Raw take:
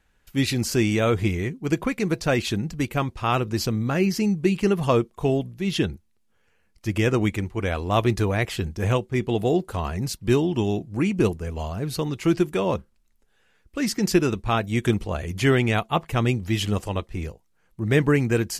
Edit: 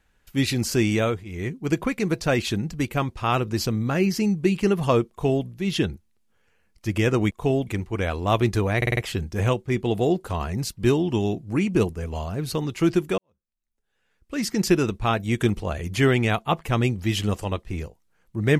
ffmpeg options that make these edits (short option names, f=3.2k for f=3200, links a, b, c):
-filter_complex "[0:a]asplit=9[a][b][c][d][e][f][g][h][i];[a]atrim=end=1.25,asetpts=PTS-STARTPTS,afade=t=out:st=1.01:d=0.24:silence=0.0794328[j];[b]atrim=start=1.25:end=7.312,asetpts=PTS-STARTPTS,afade=t=in:d=0.24:silence=0.0794328[k];[c]atrim=start=5.098:end=5.462[l];[d]atrim=start=7.308:end=8.462[m];[e]atrim=start=8.408:end=8.462[n];[f]atrim=start=8.408:end=8.462[o];[g]atrim=start=8.408:end=8.462[p];[h]atrim=start=8.408:end=12.62,asetpts=PTS-STARTPTS,afade=t=out:st=4.208:d=0.004:c=hsin[q];[i]atrim=start=12.62,asetpts=PTS-STARTPTS,afade=t=in:d=1.36:c=qua[r];[j][k]concat=n=2:v=0:a=1[s];[s][l]acrossfade=d=0.004:c1=hsin:c2=hsin[t];[t][m]acrossfade=d=0.004:c1=hsin:c2=hsin[u];[u][n]acrossfade=d=0.004:c1=hsin:c2=hsin[v];[v][o]acrossfade=d=0.004:c1=hsin:c2=hsin[w];[w][p]acrossfade=d=0.004:c1=hsin:c2=hsin[x];[q][r]concat=n=2:v=0:a=1[y];[x][y]acrossfade=d=0.004:c1=hsin:c2=hsin"